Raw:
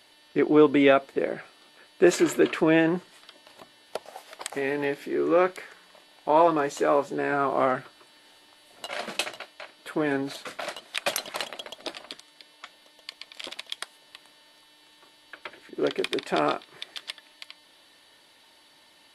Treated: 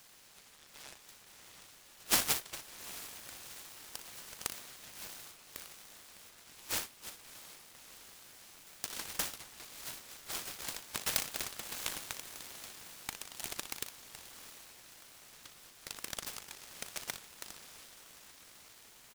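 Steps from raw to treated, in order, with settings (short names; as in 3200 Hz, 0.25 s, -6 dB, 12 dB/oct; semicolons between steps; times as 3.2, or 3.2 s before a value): 9.51–10.4 doubler 13 ms -5.5 dB; diffused feedback echo 0.689 s, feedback 57%, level -13 dB; limiter -16.5 dBFS, peak gain reduction 10.5 dB; inverse Chebyshev high-pass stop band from 1200 Hz, stop band 70 dB; early reflections 38 ms -11.5 dB, 60 ms -10.5 dB; noise-modulated delay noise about 1900 Hz, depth 0.078 ms; gain +7.5 dB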